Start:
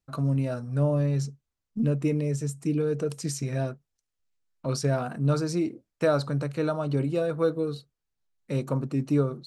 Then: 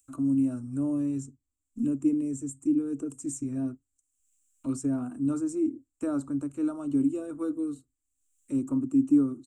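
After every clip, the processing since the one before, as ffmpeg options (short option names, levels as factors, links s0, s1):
-filter_complex "[0:a]firequalizer=gain_entry='entry(110,0);entry(170,-29);entry(260,9);entry(460,-16);entry(1200,-10);entry(1900,-22);entry(2700,-17);entry(4500,-29);entry(7500,3);entry(12000,-13)':delay=0.05:min_phase=1,acrossover=split=370|660|2200[s0][s1][s2][s3];[s3]acompressor=mode=upward:threshold=0.00251:ratio=2.5[s4];[s0][s1][s2][s4]amix=inputs=4:normalize=0"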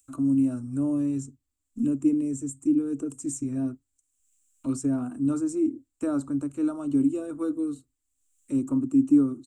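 -af "equalizer=f=4100:w=1.5:g=2,volume=1.33"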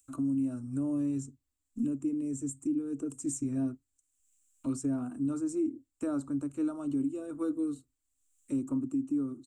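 -af "alimiter=limit=0.0841:level=0:latency=1:release=414,volume=0.75"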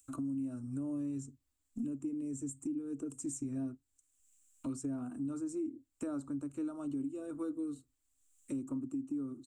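-af "acompressor=threshold=0.00631:ratio=2,volume=1.26"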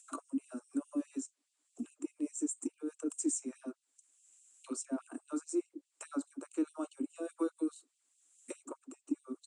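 -af "aresample=22050,aresample=44100,afftfilt=real='re*gte(b*sr/1024,220*pow(2600/220,0.5+0.5*sin(2*PI*4.8*pts/sr)))':imag='im*gte(b*sr/1024,220*pow(2600/220,0.5+0.5*sin(2*PI*4.8*pts/sr)))':win_size=1024:overlap=0.75,volume=2.24"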